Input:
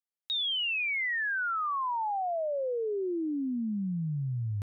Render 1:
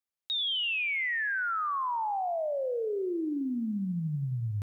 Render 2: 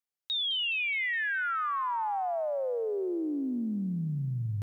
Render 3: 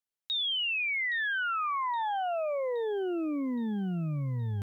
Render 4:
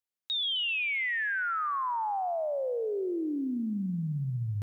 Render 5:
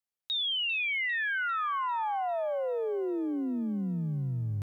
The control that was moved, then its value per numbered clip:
lo-fi delay, time: 85, 209, 819, 130, 398 ms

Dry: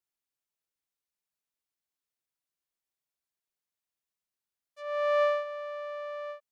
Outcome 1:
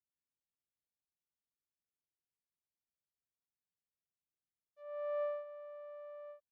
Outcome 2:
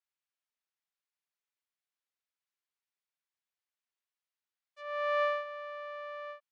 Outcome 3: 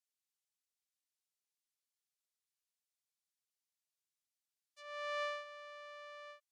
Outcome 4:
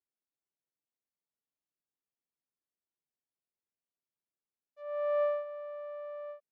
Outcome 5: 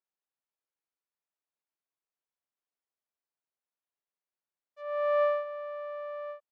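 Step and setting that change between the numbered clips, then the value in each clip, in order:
band-pass, frequency: 100, 1900, 6600, 260, 730 Hz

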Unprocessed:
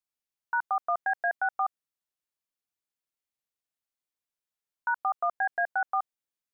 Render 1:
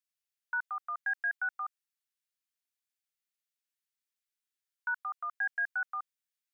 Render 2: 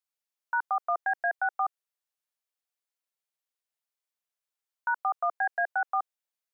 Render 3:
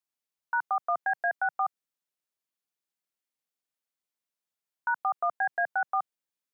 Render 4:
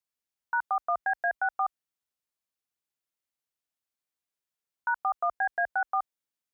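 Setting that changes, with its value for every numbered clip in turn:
HPF, cutoff: 1400, 440, 130, 40 Hz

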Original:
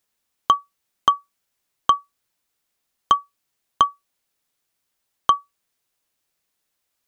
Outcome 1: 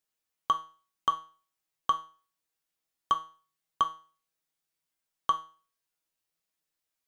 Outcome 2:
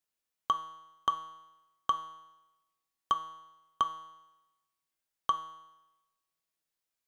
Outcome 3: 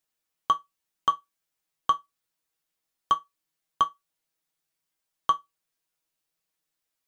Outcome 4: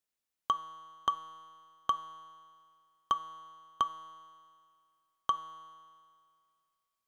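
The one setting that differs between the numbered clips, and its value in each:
resonator, decay: 0.39, 1, 0.16, 2.1 s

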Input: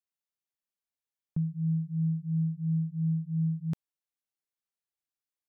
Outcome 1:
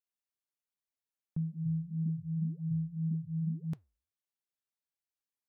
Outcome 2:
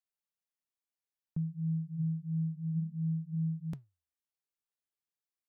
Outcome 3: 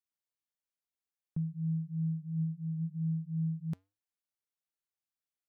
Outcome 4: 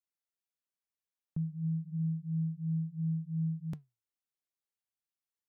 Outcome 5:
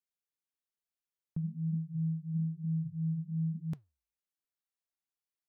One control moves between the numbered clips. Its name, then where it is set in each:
flange, rate: 1.9, 0.57, 0.2, 0.3, 1.1 Hz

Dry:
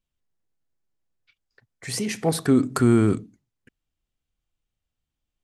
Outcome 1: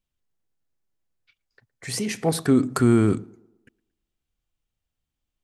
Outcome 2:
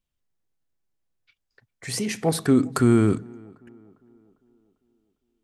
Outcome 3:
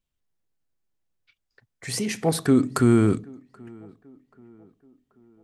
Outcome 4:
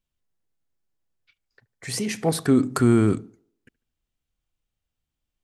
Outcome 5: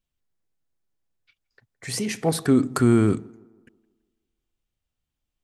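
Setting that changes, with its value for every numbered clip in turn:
tape echo, time: 112, 400, 782, 73, 164 ms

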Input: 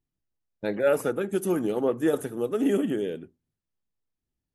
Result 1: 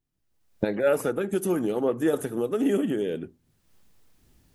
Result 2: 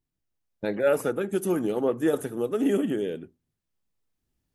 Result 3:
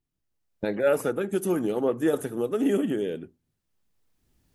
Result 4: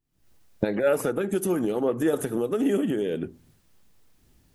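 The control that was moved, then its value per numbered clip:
recorder AGC, rising by: 35, 5.3, 13, 89 dB/s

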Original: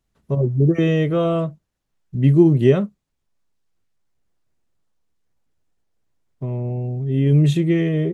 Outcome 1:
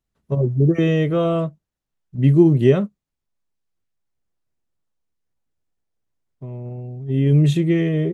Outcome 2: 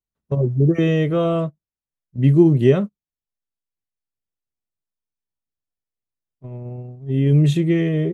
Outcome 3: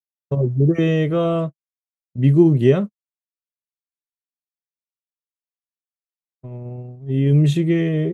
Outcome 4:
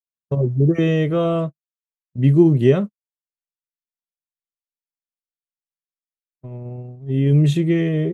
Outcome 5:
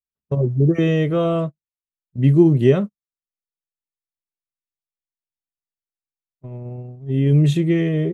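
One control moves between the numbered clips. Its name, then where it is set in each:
gate, range: -7, -20, -59, -47, -32 dB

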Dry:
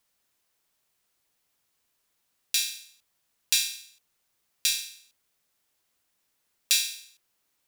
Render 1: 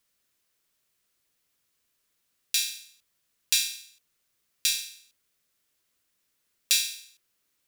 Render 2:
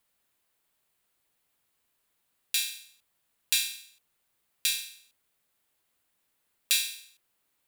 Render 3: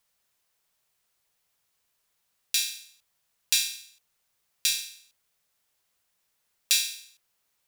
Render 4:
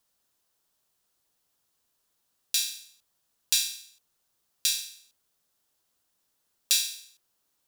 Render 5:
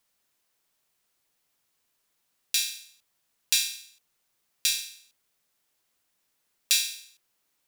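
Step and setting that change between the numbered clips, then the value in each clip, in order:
bell, frequency: 820, 5700, 290, 2200, 66 Hz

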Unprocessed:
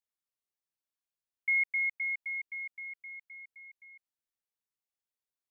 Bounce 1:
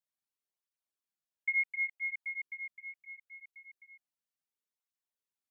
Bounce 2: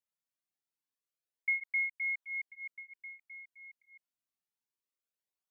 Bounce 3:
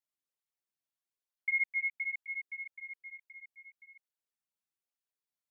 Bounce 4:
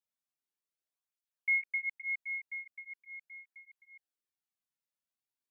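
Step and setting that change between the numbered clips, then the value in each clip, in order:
tape flanging out of phase, nulls at: 0.71, 0.26, 1.1, 0.41 Hz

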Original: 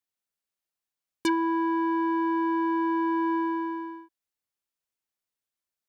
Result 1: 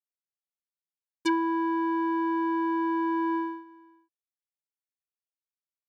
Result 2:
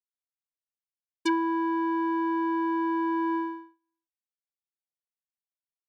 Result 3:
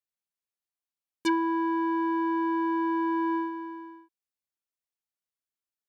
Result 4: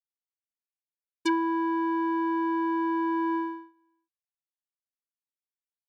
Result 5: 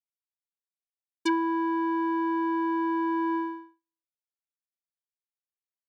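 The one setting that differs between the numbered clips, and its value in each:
gate, range: -19, -47, -7, -33, -59 dB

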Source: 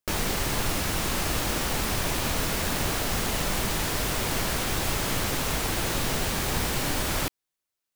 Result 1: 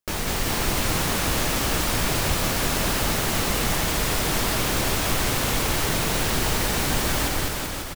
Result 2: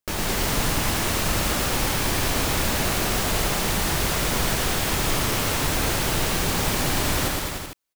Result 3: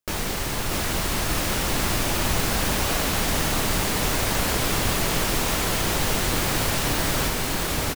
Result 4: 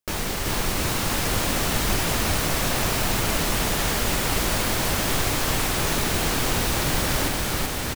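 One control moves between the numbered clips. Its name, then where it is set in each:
bouncing-ball echo, first gap: 0.2, 0.11, 0.64, 0.38 s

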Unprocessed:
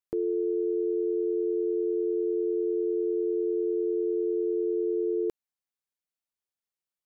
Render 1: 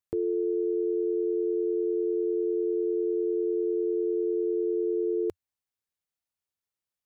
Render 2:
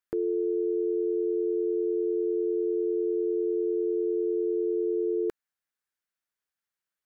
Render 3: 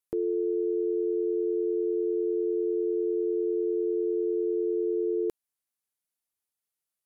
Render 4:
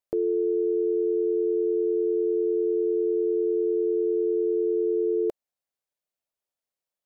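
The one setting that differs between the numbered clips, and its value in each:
bell, frequency: 90, 1600, 11000, 600 Hz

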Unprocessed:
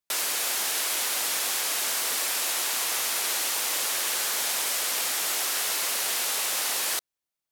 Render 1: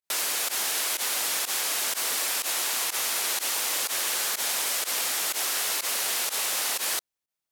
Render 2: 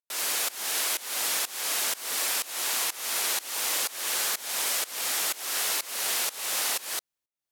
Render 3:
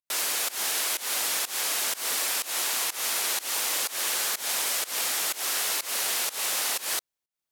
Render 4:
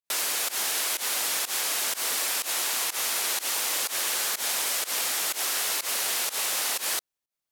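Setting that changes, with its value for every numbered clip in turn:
pump, release: 65, 364, 193, 111 ms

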